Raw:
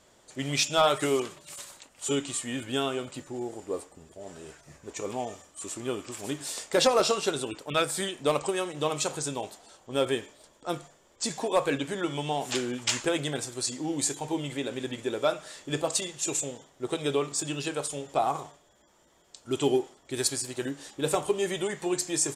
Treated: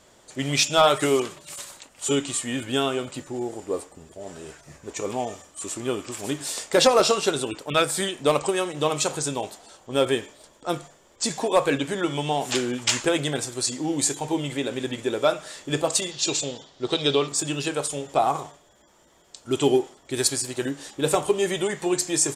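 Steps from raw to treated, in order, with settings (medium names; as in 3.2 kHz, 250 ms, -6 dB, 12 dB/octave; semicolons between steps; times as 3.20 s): 16.11–17.28 s: FFT filter 2.2 kHz 0 dB, 4.4 kHz +12 dB, 11 kHz -16 dB; trim +5 dB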